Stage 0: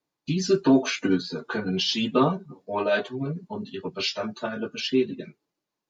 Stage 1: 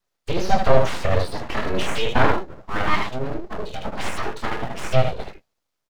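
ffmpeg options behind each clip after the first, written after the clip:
-filter_complex "[0:a]aecho=1:1:23|76:0.473|0.631,aeval=exprs='abs(val(0))':c=same,acrossover=split=3300[a][b];[b]acompressor=threshold=-45dB:ratio=4:attack=1:release=60[c];[a][c]amix=inputs=2:normalize=0,volume=5dB"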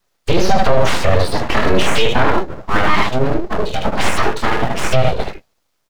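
-af "alimiter=level_in=12dB:limit=-1dB:release=50:level=0:latency=1,volume=-1dB"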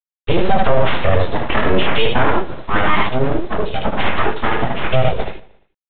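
-af "aresample=8000,acrusher=bits=4:dc=4:mix=0:aa=0.000001,aresample=44100,aecho=1:1:116|232|348:0.0891|0.041|0.0189,volume=-1dB"

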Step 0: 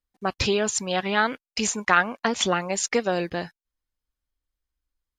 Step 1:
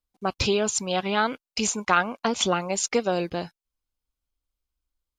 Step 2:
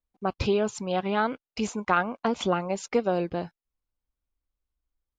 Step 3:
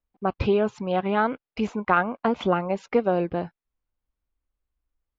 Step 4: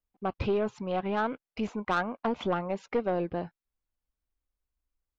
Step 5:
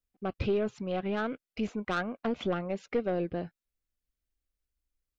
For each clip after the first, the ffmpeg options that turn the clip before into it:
-af "equalizer=f=1.8k:t=o:w=0.28:g=-11"
-af "lowpass=f=1.3k:p=1"
-af "lowpass=2.6k,volume=3dB"
-af "aeval=exprs='(tanh(5.62*val(0)+0.15)-tanh(0.15))/5.62':c=same,volume=-4.5dB"
-af "equalizer=f=940:w=2.3:g=-11"

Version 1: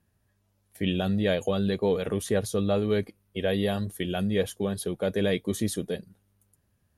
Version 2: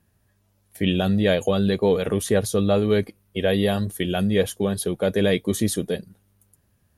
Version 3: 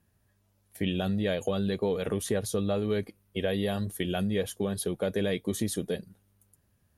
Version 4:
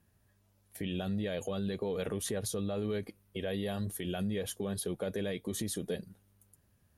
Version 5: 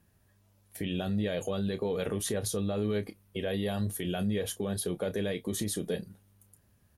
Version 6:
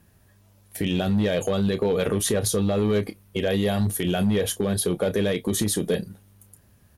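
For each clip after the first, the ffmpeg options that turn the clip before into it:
-af "highshelf=f=11k:g=3.5,volume=5.5dB"
-af "acompressor=threshold=-21dB:ratio=3,volume=-4.5dB"
-af "alimiter=level_in=1.5dB:limit=-24dB:level=0:latency=1:release=91,volume=-1.5dB"
-filter_complex "[0:a]asplit=2[a][b];[b]adelay=29,volume=-12dB[c];[a][c]amix=inputs=2:normalize=0,volume=3dB"
-af "volume=24.5dB,asoftclip=hard,volume=-24.5dB,volume=9dB"

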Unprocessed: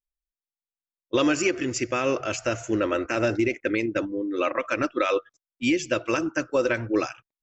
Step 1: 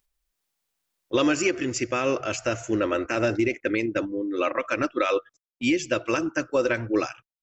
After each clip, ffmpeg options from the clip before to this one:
-af "acompressor=mode=upward:threshold=-34dB:ratio=2.5,agate=range=-18dB:threshold=-48dB:ratio=16:detection=peak"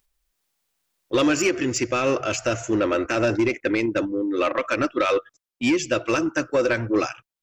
-af "asoftclip=type=tanh:threshold=-17.5dB,volume=4.5dB"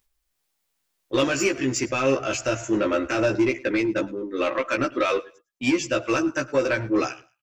-filter_complex "[0:a]asplit=2[a][b];[b]adelay=15,volume=-2.5dB[c];[a][c]amix=inputs=2:normalize=0,aecho=1:1:106|212:0.0794|0.0199,volume=-3dB"

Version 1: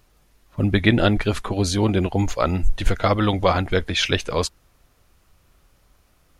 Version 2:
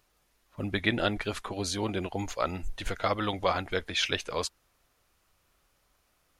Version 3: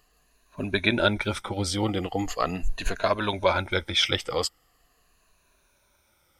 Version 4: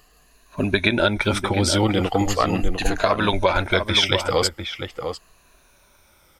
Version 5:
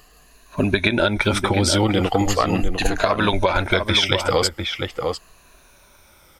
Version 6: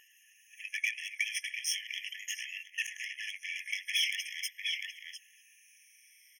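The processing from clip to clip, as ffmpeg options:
-af "lowshelf=f=310:g=-10,volume=-6.5dB"
-af "afftfilt=real='re*pow(10,12/40*sin(2*PI*(1.5*log(max(b,1)*sr/1024/100)/log(2)-(-0.41)*(pts-256)/sr)))':imag='im*pow(10,12/40*sin(2*PI*(1.5*log(max(b,1)*sr/1024/100)/log(2)-(-0.41)*(pts-256)/sr)))':win_size=1024:overlap=0.75,volume=3dB"
-filter_complex "[0:a]acompressor=threshold=-24dB:ratio=5,asplit=2[a][b];[b]adelay=699.7,volume=-7dB,highshelf=f=4k:g=-15.7[c];[a][c]amix=inputs=2:normalize=0,volume=9dB"
-af "acompressor=threshold=-19dB:ratio=4,volume=4.5dB"
-filter_complex "[0:a]asoftclip=type=tanh:threshold=-18dB,asplit=2[a][b];[b]adelay=240,highpass=300,lowpass=3.4k,asoftclip=type=hard:threshold=-27.5dB,volume=-17dB[c];[a][c]amix=inputs=2:normalize=0,afftfilt=real='re*eq(mod(floor(b*sr/1024/1700),2),1)':imag='im*eq(mod(floor(b*sr/1024/1700),2),1)':win_size=1024:overlap=0.75,volume=-4dB"

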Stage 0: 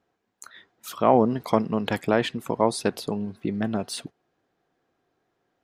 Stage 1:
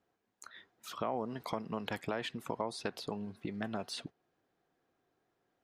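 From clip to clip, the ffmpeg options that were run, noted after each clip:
-filter_complex "[0:a]alimiter=limit=-11dB:level=0:latency=1:release=264,acrossover=split=620|6400[a][b][c];[a]acompressor=threshold=-33dB:ratio=4[d];[b]acompressor=threshold=-30dB:ratio=4[e];[c]acompressor=threshold=-53dB:ratio=4[f];[d][e][f]amix=inputs=3:normalize=0,volume=-5.5dB"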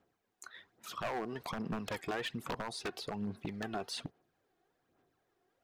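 -af "aphaser=in_gain=1:out_gain=1:delay=2.8:decay=0.5:speed=1.2:type=sinusoidal,aeval=exprs='0.0316*(abs(mod(val(0)/0.0316+3,4)-2)-1)':c=same"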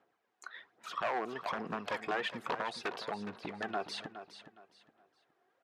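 -filter_complex "[0:a]bandpass=f=1.2k:t=q:w=0.52:csg=0,asplit=2[a][b];[b]aecho=0:1:415|830|1245:0.266|0.0718|0.0194[c];[a][c]amix=inputs=2:normalize=0,volume=5dB"

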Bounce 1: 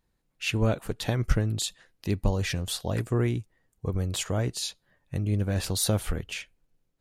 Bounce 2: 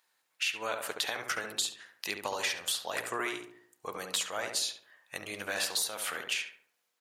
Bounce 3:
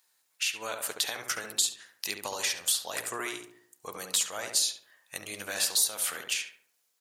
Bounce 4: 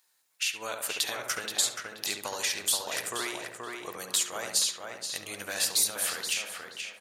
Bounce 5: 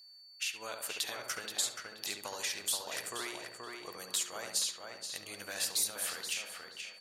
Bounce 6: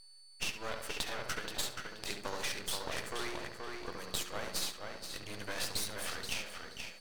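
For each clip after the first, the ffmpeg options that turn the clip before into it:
-filter_complex "[0:a]highpass=1.1k,acompressor=threshold=-38dB:ratio=12,asplit=2[a][b];[b]adelay=70,lowpass=f=1.5k:p=1,volume=-4dB,asplit=2[c][d];[d]adelay=70,lowpass=f=1.5k:p=1,volume=0.51,asplit=2[e][f];[f]adelay=70,lowpass=f=1.5k:p=1,volume=0.51,asplit=2[g][h];[h]adelay=70,lowpass=f=1.5k:p=1,volume=0.51,asplit=2[i][j];[j]adelay=70,lowpass=f=1.5k:p=1,volume=0.51,asplit=2[k][l];[l]adelay=70,lowpass=f=1.5k:p=1,volume=0.51,asplit=2[m][n];[n]adelay=70,lowpass=f=1.5k:p=1,volume=0.51[o];[c][e][g][i][k][m][o]amix=inputs=7:normalize=0[p];[a][p]amix=inputs=2:normalize=0,volume=9dB"
-af "bass=f=250:g=2,treble=f=4k:g=10,volume=-2dB"
-filter_complex "[0:a]asplit=2[a][b];[b]adelay=478,lowpass=f=3.1k:p=1,volume=-3.5dB,asplit=2[c][d];[d]adelay=478,lowpass=f=3.1k:p=1,volume=0.33,asplit=2[e][f];[f]adelay=478,lowpass=f=3.1k:p=1,volume=0.33,asplit=2[g][h];[h]adelay=478,lowpass=f=3.1k:p=1,volume=0.33[i];[a][c][e][g][i]amix=inputs=5:normalize=0"
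-af "aeval=exprs='val(0)+0.00447*sin(2*PI*4500*n/s)':c=same,volume=-6.5dB"
-af "aemphasis=mode=reproduction:type=bsi,aeval=exprs='max(val(0),0)':c=same,bandreject=f=7k:w=16,volume=7.5dB"

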